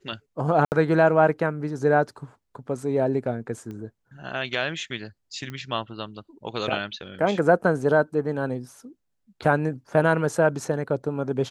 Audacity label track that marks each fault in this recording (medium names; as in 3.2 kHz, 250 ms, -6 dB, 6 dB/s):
0.650000	0.720000	dropout 69 ms
3.710000	3.710000	pop -27 dBFS
5.500000	5.500000	pop -22 dBFS